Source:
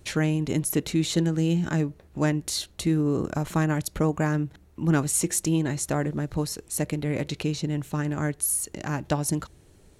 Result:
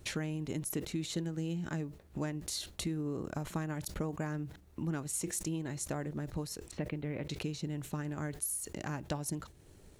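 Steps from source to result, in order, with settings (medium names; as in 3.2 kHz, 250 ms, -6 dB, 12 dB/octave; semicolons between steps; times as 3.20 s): 6.71–7.29 s: low-pass 3.3 kHz 24 dB/octave; compression 2.5:1, threshold -36 dBFS, peak gain reduction 13 dB; bit crusher 12-bit; transient shaper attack +1 dB, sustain -3 dB; decay stretcher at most 130 dB/s; trim -2.5 dB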